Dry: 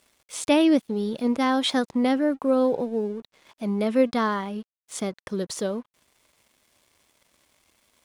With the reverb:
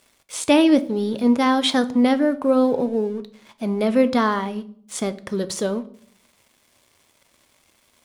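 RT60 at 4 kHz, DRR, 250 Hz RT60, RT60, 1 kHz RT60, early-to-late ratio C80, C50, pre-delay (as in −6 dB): 0.45 s, 11.0 dB, 0.90 s, 0.55 s, 0.50 s, 21.5 dB, 17.5 dB, 7 ms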